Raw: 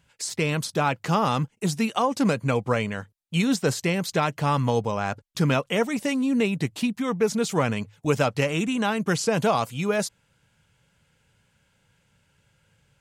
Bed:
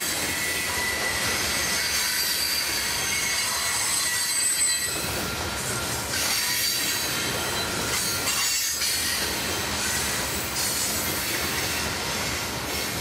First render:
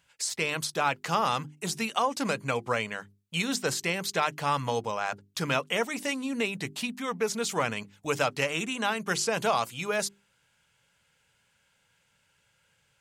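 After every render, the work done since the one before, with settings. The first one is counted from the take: low shelf 480 Hz -11.5 dB; notches 50/100/150/200/250/300/350/400 Hz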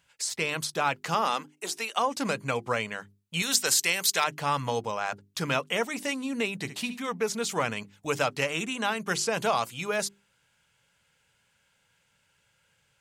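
1.14–1.95 HPF 180 Hz -> 390 Hz 24 dB/oct; 3.42–4.24 tilt +3.5 dB/oct; 6.55–7.09 flutter echo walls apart 12 m, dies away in 0.34 s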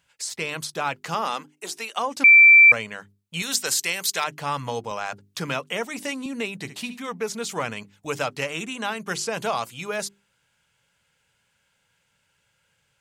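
2.24–2.72 bleep 2340 Hz -7.5 dBFS; 4.91–6.26 three-band squash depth 40%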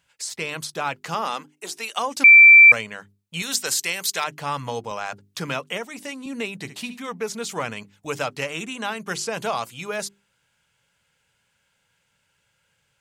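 1.83–2.81 high shelf 3000 Hz +6 dB; 5.78–6.27 gain -4 dB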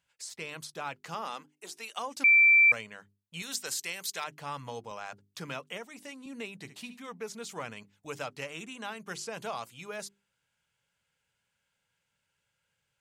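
gain -11 dB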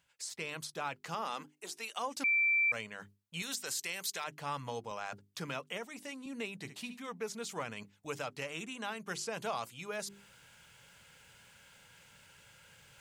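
limiter -25.5 dBFS, peak gain reduction 9.5 dB; reverse; upward compressor, threshold -42 dBFS; reverse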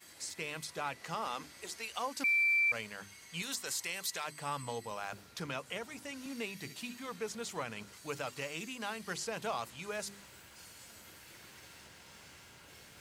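add bed -29.5 dB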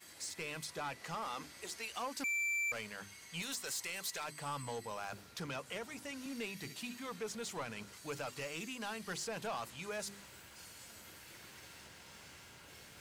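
soft clip -34 dBFS, distortion -9 dB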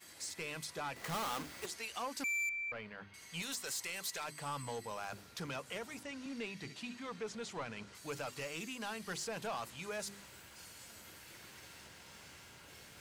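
0.96–1.66 half-waves squared off; 2.49–3.14 air absorption 360 m; 6.03–7.95 air absorption 68 m

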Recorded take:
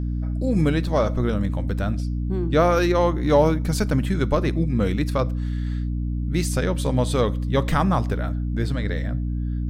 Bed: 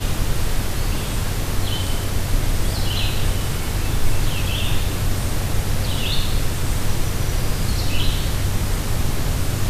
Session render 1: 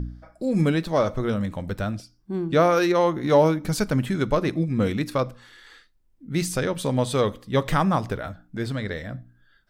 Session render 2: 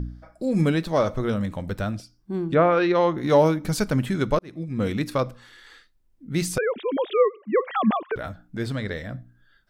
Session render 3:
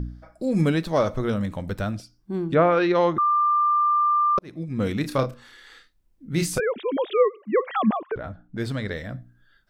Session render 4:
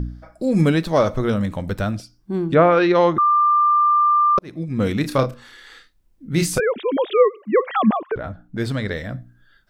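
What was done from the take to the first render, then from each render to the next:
de-hum 60 Hz, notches 5
2.53–3.16 LPF 2400 Hz -> 6100 Hz 24 dB/oct; 4.39–4.97 fade in; 6.58–8.16 sine-wave speech
3.18–4.38 bleep 1190 Hz -17 dBFS; 5.01–6.6 doubler 30 ms -6.5 dB; 7.86–8.58 LPF 1200 Hz 6 dB/oct
gain +4.5 dB

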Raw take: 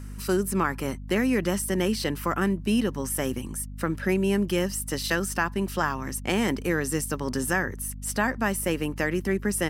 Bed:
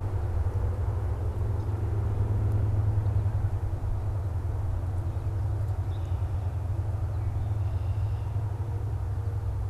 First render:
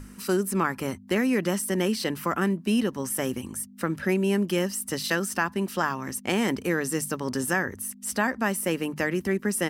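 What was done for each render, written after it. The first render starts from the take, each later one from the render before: notches 50/100/150 Hz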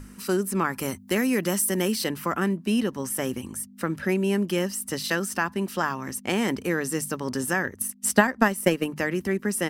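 0.72–2.08 high shelf 5300 Hz -> 9000 Hz +11 dB; 7.64–8.92 transient shaper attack +11 dB, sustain -6 dB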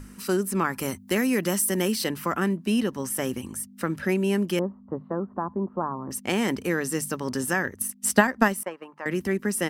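4.59–6.11 Chebyshev low-pass 1100 Hz, order 4; 8.63–9.06 band-pass 1000 Hz, Q 2.6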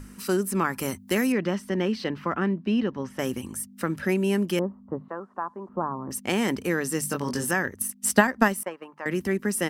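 1.32–3.19 air absorption 220 m; 5.08–5.69 weighting filter ITU-R 468; 7.01–7.51 doubler 21 ms -3.5 dB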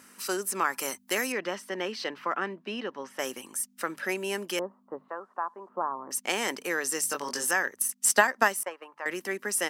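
HPF 540 Hz 12 dB/oct; dynamic EQ 6400 Hz, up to +5 dB, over -47 dBFS, Q 1.5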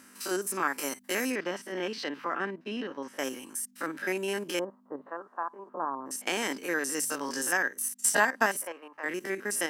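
stepped spectrum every 50 ms; small resonant body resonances 280/1600 Hz, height 7 dB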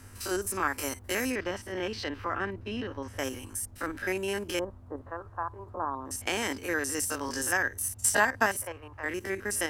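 add bed -20.5 dB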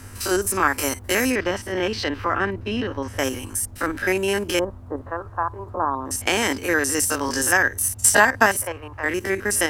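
gain +9.5 dB; limiter -2 dBFS, peak gain reduction 1.5 dB

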